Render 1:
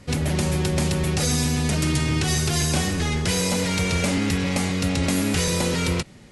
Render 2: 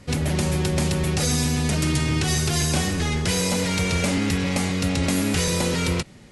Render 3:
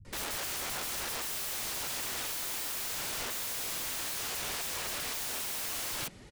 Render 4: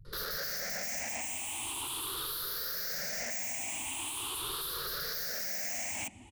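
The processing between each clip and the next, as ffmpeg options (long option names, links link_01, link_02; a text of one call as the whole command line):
ffmpeg -i in.wav -af anull out.wav
ffmpeg -i in.wav -filter_complex "[0:a]flanger=delay=2.1:depth=5.2:regen=-20:speed=1.6:shape=sinusoidal,aeval=exprs='(mod(37.6*val(0)+1,2)-1)/37.6':channel_layout=same,acrossover=split=180[link_01][link_02];[link_02]adelay=50[link_03];[link_01][link_03]amix=inputs=2:normalize=0" out.wav
ffmpeg -i in.wav -af "afftfilt=real='re*pow(10,19/40*sin(2*PI*(0.61*log(max(b,1)*sr/1024/100)/log(2)-(0.42)*(pts-256)/sr)))':imag='im*pow(10,19/40*sin(2*PI*(0.61*log(max(b,1)*sr/1024/100)/log(2)-(0.42)*(pts-256)/sr)))':win_size=1024:overlap=0.75,volume=-5dB" out.wav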